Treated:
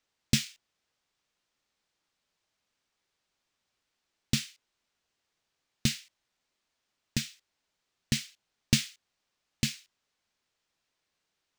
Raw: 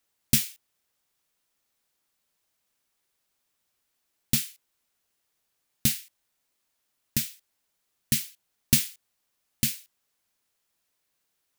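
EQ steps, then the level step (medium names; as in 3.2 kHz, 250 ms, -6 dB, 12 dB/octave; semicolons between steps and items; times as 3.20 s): distance through air 150 m; treble shelf 5.2 kHz +11.5 dB; 0.0 dB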